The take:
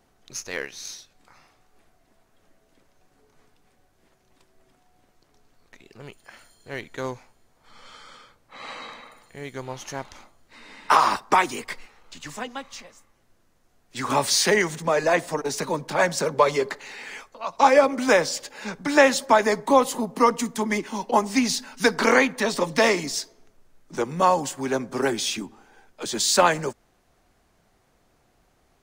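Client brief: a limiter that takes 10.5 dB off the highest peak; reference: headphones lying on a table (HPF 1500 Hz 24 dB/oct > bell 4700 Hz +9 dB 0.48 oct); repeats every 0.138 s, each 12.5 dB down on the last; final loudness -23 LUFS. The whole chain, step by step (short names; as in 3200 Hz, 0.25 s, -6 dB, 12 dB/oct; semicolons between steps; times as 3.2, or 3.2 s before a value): limiter -14 dBFS; HPF 1500 Hz 24 dB/oct; bell 4700 Hz +9 dB 0.48 oct; feedback echo 0.138 s, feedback 24%, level -12.5 dB; gain +4.5 dB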